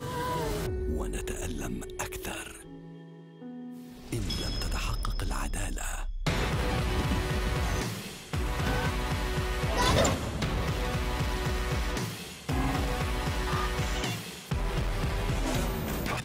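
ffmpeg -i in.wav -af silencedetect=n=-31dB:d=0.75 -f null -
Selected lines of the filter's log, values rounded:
silence_start: 2.47
silence_end: 4.13 | silence_duration: 1.66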